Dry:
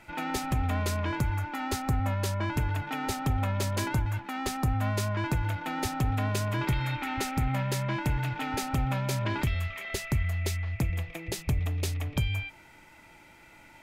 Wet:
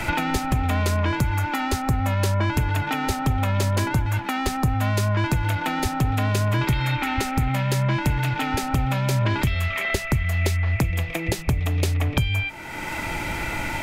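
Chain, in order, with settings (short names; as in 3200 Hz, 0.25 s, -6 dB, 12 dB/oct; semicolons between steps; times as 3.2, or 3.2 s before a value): three-band squash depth 100%; gain +6 dB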